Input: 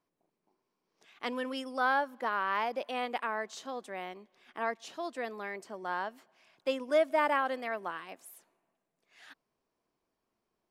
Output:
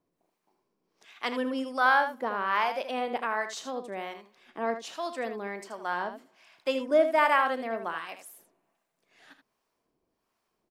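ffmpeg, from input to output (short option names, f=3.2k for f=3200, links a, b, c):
-filter_complex "[0:a]acrossover=split=670[a][b];[a]aeval=exprs='val(0)*(1-0.7/2+0.7/2*cos(2*PI*1.3*n/s))':c=same[c];[b]aeval=exprs='val(0)*(1-0.7/2-0.7/2*cos(2*PI*1.3*n/s))':c=same[d];[c][d]amix=inputs=2:normalize=0,aecho=1:1:35|79:0.158|0.335,volume=7dB"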